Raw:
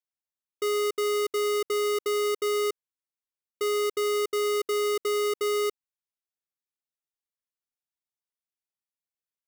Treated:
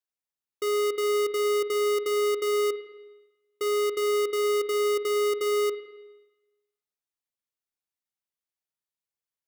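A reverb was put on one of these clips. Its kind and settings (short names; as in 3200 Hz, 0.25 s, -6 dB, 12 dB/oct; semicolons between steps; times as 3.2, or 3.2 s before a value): spring tank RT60 1.1 s, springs 46/53 ms, chirp 65 ms, DRR 10 dB; gain -1 dB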